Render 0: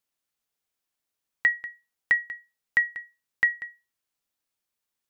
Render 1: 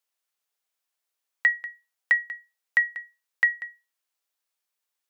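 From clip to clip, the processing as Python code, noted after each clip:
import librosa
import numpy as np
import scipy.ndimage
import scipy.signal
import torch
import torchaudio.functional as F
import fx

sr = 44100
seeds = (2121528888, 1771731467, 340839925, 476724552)

y = scipy.signal.sosfilt(scipy.signal.butter(2, 500.0, 'highpass', fs=sr, output='sos'), x)
y = F.gain(torch.from_numpy(y), 1.0).numpy()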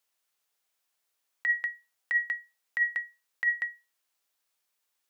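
y = fx.over_compress(x, sr, threshold_db=-25.0, ratio=-1.0)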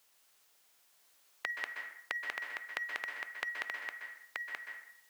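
y = x + 10.0 ** (-5.5 / 20.0) * np.pad(x, (int(929 * sr / 1000.0), 0))[:len(x)]
y = fx.rev_plate(y, sr, seeds[0], rt60_s=0.65, hf_ratio=0.75, predelay_ms=115, drr_db=5.5)
y = fx.spectral_comp(y, sr, ratio=2.0)
y = F.gain(torch.from_numpy(y), 1.0).numpy()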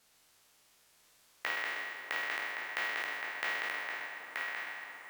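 y = fx.spec_trails(x, sr, decay_s=1.89)
y = fx.echo_wet_lowpass(y, sr, ms=280, feedback_pct=79, hz=1200.0, wet_db=-11.0)
y = np.repeat(y[::2], 2)[:len(y)]
y = F.gain(torch.from_numpy(y), -2.0).numpy()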